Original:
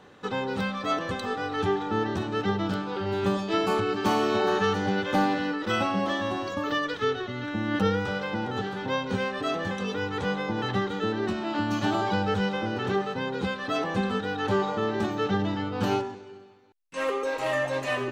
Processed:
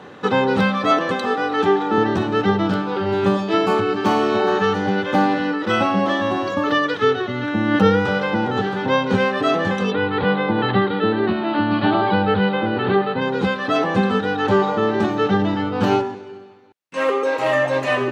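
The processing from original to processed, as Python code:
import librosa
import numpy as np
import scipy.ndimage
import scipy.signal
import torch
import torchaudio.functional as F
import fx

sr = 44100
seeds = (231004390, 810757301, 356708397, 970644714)

y = fx.highpass(x, sr, hz=190.0, slope=12, at=(0.91, 1.98))
y = fx.steep_lowpass(y, sr, hz=4500.0, slope=72, at=(9.9, 13.2), fade=0.02)
y = fx.rider(y, sr, range_db=10, speed_s=2.0)
y = scipy.signal.sosfilt(scipy.signal.butter(2, 110.0, 'highpass', fs=sr, output='sos'), y)
y = fx.high_shelf(y, sr, hz=4900.0, db=-10.0)
y = F.gain(torch.from_numpy(y), 9.0).numpy()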